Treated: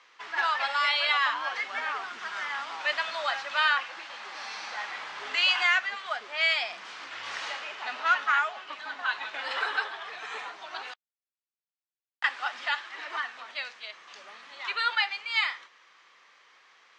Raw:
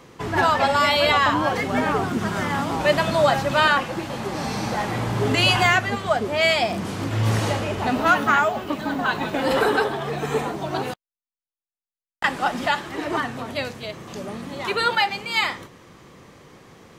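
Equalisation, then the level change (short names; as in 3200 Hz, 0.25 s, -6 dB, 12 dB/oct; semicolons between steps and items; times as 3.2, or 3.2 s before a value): Butterworth band-pass 3000 Hz, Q 0.56; air absorption 87 m; -2.5 dB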